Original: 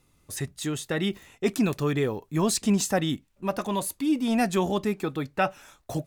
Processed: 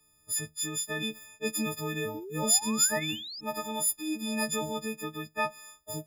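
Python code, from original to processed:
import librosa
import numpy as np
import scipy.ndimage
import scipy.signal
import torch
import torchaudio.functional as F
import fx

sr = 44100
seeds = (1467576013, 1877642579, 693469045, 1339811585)

y = fx.freq_snap(x, sr, grid_st=6)
y = fx.room_flutter(y, sr, wall_m=11.5, rt60_s=0.26, at=(3.08, 3.69), fade=0.02)
y = fx.spec_paint(y, sr, seeds[0], shape='rise', start_s=2.14, length_s=1.27, low_hz=290.0, high_hz=5300.0, level_db=-32.0)
y = y * librosa.db_to_amplitude(-9.0)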